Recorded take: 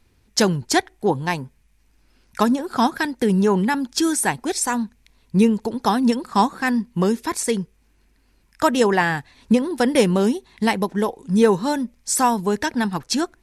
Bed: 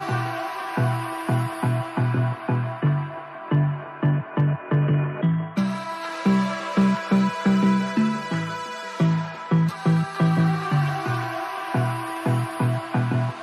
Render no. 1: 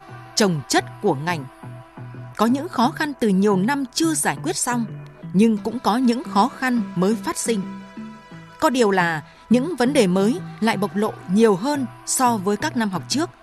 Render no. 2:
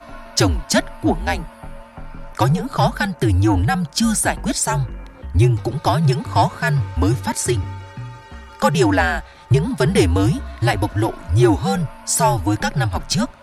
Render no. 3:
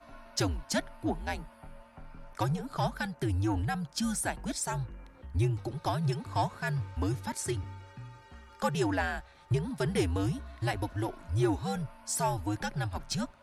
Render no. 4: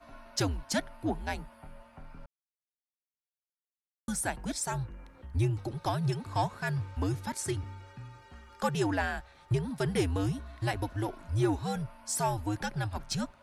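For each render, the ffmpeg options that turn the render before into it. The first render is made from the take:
ffmpeg -i in.wav -i bed.wav -filter_complex "[1:a]volume=-14dB[link_01];[0:a][link_01]amix=inputs=2:normalize=0" out.wav
ffmpeg -i in.wav -filter_complex "[0:a]afreqshift=-98,asplit=2[link_01][link_02];[link_02]asoftclip=type=tanh:threshold=-18dB,volume=-6.5dB[link_03];[link_01][link_03]amix=inputs=2:normalize=0" out.wav
ffmpeg -i in.wav -af "volume=-14dB" out.wav
ffmpeg -i in.wav -filter_complex "[0:a]asplit=3[link_01][link_02][link_03];[link_01]atrim=end=2.26,asetpts=PTS-STARTPTS,afade=type=out:start_time=2.256:duration=0.004:curve=hsin[link_04];[link_02]atrim=start=2.26:end=4.08,asetpts=PTS-STARTPTS,volume=0[link_05];[link_03]atrim=start=4.08,asetpts=PTS-STARTPTS,afade=type=in:duration=0.004:curve=hsin[link_06];[link_04][link_05][link_06]concat=n=3:v=0:a=1" out.wav

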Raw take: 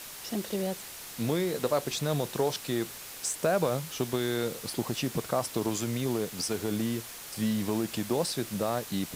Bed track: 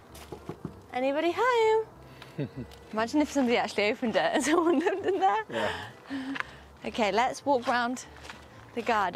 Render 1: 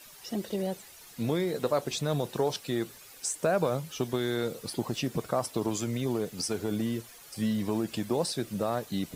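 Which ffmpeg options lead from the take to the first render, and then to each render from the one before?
ffmpeg -i in.wav -af "afftdn=noise_reduction=11:noise_floor=-44" out.wav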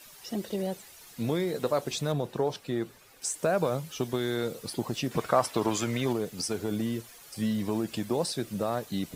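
ffmpeg -i in.wav -filter_complex "[0:a]asettb=1/sr,asplit=3[link_01][link_02][link_03];[link_01]atrim=end=2.124[link_04];[link_02]atrim=start=2.12:end=3.22,asetpts=PTS-STARTPTS,afade=type=in:duration=0.004:curve=qsin,afade=type=out:start_time=1.096:duration=0.004:curve=qsin,highshelf=frequency=3000:gain=-9.5[link_05];[link_03]atrim=start=3.216[link_06];[link_04][link_05]acrossfade=duration=0.004:curve1=hsin:curve2=qsin[link_07];[link_07][link_06]acrossfade=duration=0.004:curve1=qsin:curve2=hsin,asettb=1/sr,asplit=3[link_08][link_09][link_10];[link_08]atrim=end=5.114[link_11];[link_09]atrim=start=5.11:end=6.13,asetpts=PTS-STARTPTS,afade=type=in:duration=0.004:curve=qsin,afade=type=out:start_time=1.016:duration=0.004:curve=qsin,equalizer=frequency=1600:width=0.43:gain=9[link_12];[link_10]atrim=start=6.126[link_13];[link_11][link_12]acrossfade=duration=0.004:curve1=hsin:curve2=qsin[link_14];[link_14][link_13]acrossfade=duration=0.004:curve1=qsin:curve2=hsin" out.wav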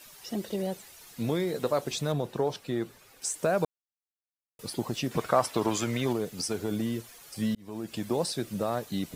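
ffmpeg -i in.wav -filter_complex "[0:a]asplit=4[link_01][link_02][link_03][link_04];[link_01]atrim=end=3.65,asetpts=PTS-STARTPTS,afade=type=out:start_time=3.646:duration=0.004:curve=hsin[link_05];[link_02]atrim=start=3.65:end=4.59,asetpts=PTS-STARTPTS,volume=0[link_06];[link_03]atrim=start=4.59:end=7.55,asetpts=PTS-STARTPTS,afade=type=in:duration=0.004:curve=hsin,afade=type=out:start_time=2.956:duration=0.004:curve=hsin[link_07];[link_04]atrim=start=7.55,asetpts=PTS-STARTPTS,afade=type=in:duration=0.53[link_08];[link_05][link_06][link_07][link_08]concat=n=4:v=0:a=1" out.wav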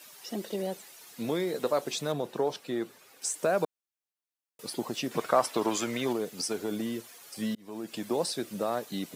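ffmpeg -i in.wav -af "highpass=220" out.wav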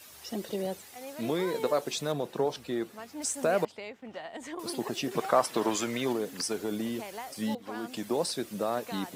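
ffmpeg -i in.wav -i bed.wav -filter_complex "[1:a]volume=-15.5dB[link_01];[0:a][link_01]amix=inputs=2:normalize=0" out.wav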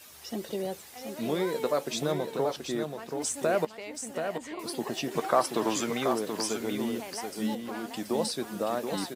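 ffmpeg -i in.wav -filter_complex "[0:a]asplit=2[link_01][link_02];[link_02]adelay=13,volume=-14dB[link_03];[link_01][link_03]amix=inputs=2:normalize=0,aecho=1:1:729:0.473" out.wav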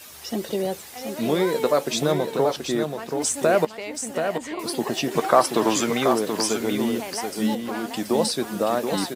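ffmpeg -i in.wav -af "volume=7.5dB" out.wav

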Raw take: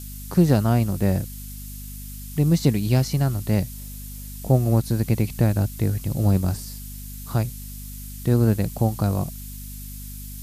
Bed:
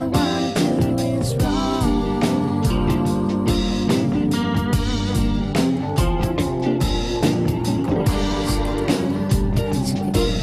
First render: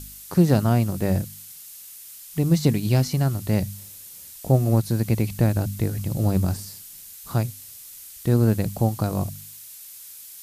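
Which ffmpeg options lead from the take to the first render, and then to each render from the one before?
ffmpeg -i in.wav -af "bandreject=frequency=50:width_type=h:width=4,bandreject=frequency=100:width_type=h:width=4,bandreject=frequency=150:width_type=h:width=4,bandreject=frequency=200:width_type=h:width=4,bandreject=frequency=250:width_type=h:width=4" out.wav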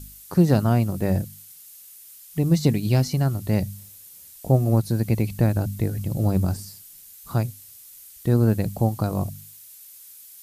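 ffmpeg -i in.wav -af "afftdn=noise_reduction=6:noise_floor=-43" out.wav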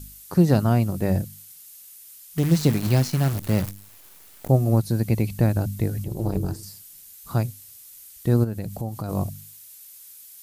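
ffmpeg -i in.wav -filter_complex "[0:a]asettb=1/sr,asplit=3[link_01][link_02][link_03];[link_01]atrim=end=2.384[link_04];[link_02]atrim=start=2.38:end=4.49,asetpts=PTS-STARTPTS,afade=type=in:duration=0.004:curve=qsin,afade=type=out:start_time=2.106:duration=0.004:curve=qsin,acrusher=bits=6:dc=4:mix=0:aa=0.000001[link_05];[link_03]atrim=start=4.486[link_06];[link_04][link_05]acrossfade=duration=0.004:curve1=hsin:curve2=qsin[link_07];[link_07][link_06]acrossfade=duration=0.004:curve1=qsin:curve2=hsin,asettb=1/sr,asplit=3[link_08][link_09][link_10];[link_08]atrim=end=6.044[link_11];[link_09]atrim=start=6.04:end=6.63,asetpts=PTS-STARTPTS,afade=type=in:duration=0.004:curve=qsin,afade=type=out:start_time=0.586:duration=0.004:curve=qsin,tremolo=f=230:d=0.947[link_12];[link_10]atrim=start=6.626[link_13];[link_11][link_12]acrossfade=duration=0.004:curve1=hsin:curve2=qsin[link_14];[link_14][link_13]acrossfade=duration=0.004:curve1=qsin:curve2=hsin,asplit=3[link_15][link_16][link_17];[link_15]afade=type=out:start_time=8.43:duration=0.02[link_18];[link_16]acompressor=threshold=-29dB:ratio=2.5:attack=3.2:release=140:knee=1:detection=peak,afade=type=in:start_time=8.43:duration=0.02,afade=type=out:start_time=9.08:duration=0.02[link_19];[link_17]afade=type=in:start_time=9.08:duration=0.02[link_20];[link_18][link_19][link_20]amix=inputs=3:normalize=0" out.wav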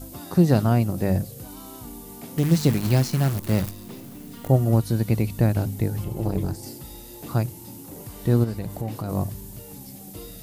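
ffmpeg -i in.wav -i bed.wav -filter_complex "[1:a]volume=-21.5dB[link_01];[0:a][link_01]amix=inputs=2:normalize=0" out.wav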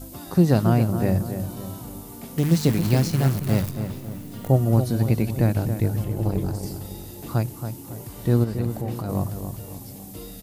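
ffmpeg -i in.wav -filter_complex "[0:a]asplit=2[link_01][link_02];[link_02]adelay=276,lowpass=frequency=1900:poles=1,volume=-8dB,asplit=2[link_03][link_04];[link_04]adelay=276,lowpass=frequency=1900:poles=1,volume=0.47,asplit=2[link_05][link_06];[link_06]adelay=276,lowpass=frequency=1900:poles=1,volume=0.47,asplit=2[link_07][link_08];[link_08]adelay=276,lowpass=frequency=1900:poles=1,volume=0.47,asplit=2[link_09][link_10];[link_10]adelay=276,lowpass=frequency=1900:poles=1,volume=0.47[link_11];[link_01][link_03][link_05][link_07][link_09][link_11]amix=inputs=6:normalize=0" out.wav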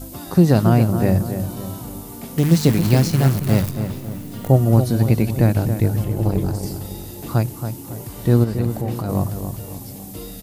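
ffmpeg -i in.wav -af "volume=4.5dB,alimiter=limit=-2dB:level=0:latency=1" out.wav

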